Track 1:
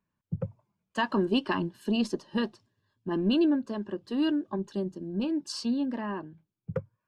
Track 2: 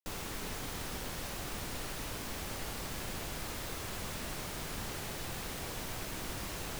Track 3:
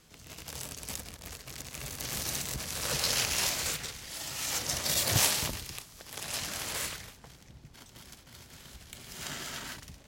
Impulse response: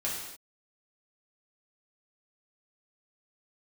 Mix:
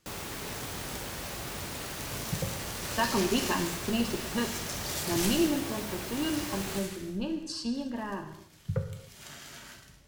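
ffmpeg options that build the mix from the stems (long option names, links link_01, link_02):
-filter_complex "[0:a]asubboost=boost=7.5:cutoff=87,adelay=2000,volume=-4.5dB,asplit=2[link_01][link_02];[link_02]volume=-6dB[link_03];[1:a]highpass=54,volume=0.5dB,asplit=2[link_04][link_05];[link_05]volume=-11.5dB[link_06];[2:a]volume=-12.5dB,asplit=2[link_07][link_08];[link_08]volume=-3.5dB[link_09];[3:a]atrim=start_sample=2205[link_10];[link_03][link_06][link_09]amix=inputs=3:normalize=0[link_11];[link_11][link_10]afir=irnorm=-1:irlink=0[link_12];[link_01][link_04][link_07][link_12]amix=inputs=4:normalize=0"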